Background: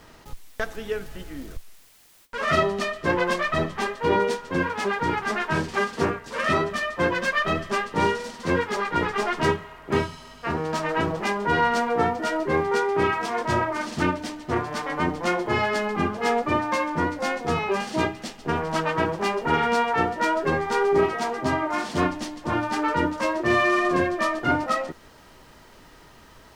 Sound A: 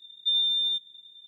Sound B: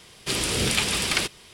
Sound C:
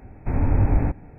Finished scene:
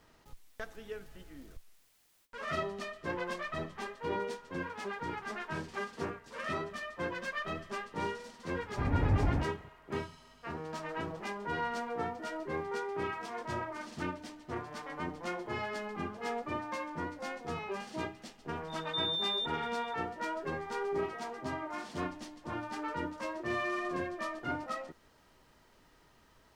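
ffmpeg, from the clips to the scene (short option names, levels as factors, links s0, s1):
-filter_complex "[0:a]volume=0.2[s0];[3:a]highpass=55[s1];[1:a]alimiter=level_in=1.41:limit=0.0631:level=0:latency=1:release=71,volume=0.708[s2];[s1]atrim=end=1.18,asetpts=PTS-STARTPTS,volume=0.422,afade=t=in:d=0.004:c=hsin,afade=t=out:st=1.176:d=0.004:c=hsin,adelay=8510[s3];[s2]atrim=end=1.27,asetpts=PTS-STARTPTS,volume=0.668,afade=t=in:d=0.004:c=hsin,afade=t=out:st=1.266:d=0.004:c=hsin,adelay=18680[s4];[s0][s3][s4]amix=inputs=3:normalize=0"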